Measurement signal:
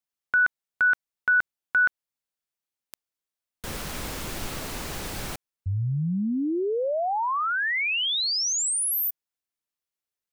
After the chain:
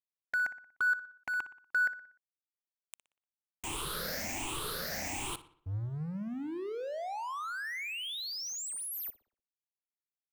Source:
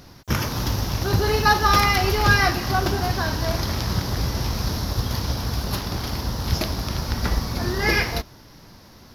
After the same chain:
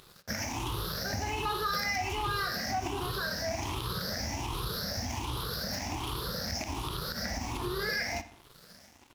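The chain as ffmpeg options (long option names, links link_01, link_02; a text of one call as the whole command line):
ffmpeg -i in.wav -filter_complex "[0:a]afftfilt=real='re*pow(10,18/40*sin(2*PI*(0.64*log(max(b,1)*sr/1024/100)/log(2)-(1.3)*(pts-256)/sr)))':imag='im*pow(10,18/40*sin(2*PI*(0.64*log(max(b,1)*sr/1024/100)/log(2)-(1.3)*(pts-256)/sr)))':win_size=1024:overlap=0.75,lowshelf=frequency=250:gain=-8,acompressor=threshold=-26dB:ratio=4:attack=0.37:release=79:detection=rms,aeval=exprs='sgn(val(0))*max(abs(val(0))-0.00501,0)':channel_layout=same,asplit=2[link_01][link_02];[link_02]adelay=60,lowpass=frequency=4500:poles=1,volume=-14dB,asplit=2[link_03][link_04];[link_04]adelay=60,lowpass=frequency=4500:poles=1,volume=0.5,asplit=2[link_05][link_06];[link_06]adelay=60,lowpass=frequency=4500:poles=1,volume=0.5,asplit=2[link_07][link_08];[link_08]adelay=60,lowpass=frequency=4500:poles=1,volume=0.5,asplit=2[link_09][link_10];[link_10]adelay=60,lowpass=frequency=4500:poles=1,volume=0.5[link_11];[link_03][link_05][link_07][link_09][link_11]amix=inputs=5:normalize=0[link_12];[link_01][link_12]amix=inputs=2:normalize=0,volume=-2dB" out.wav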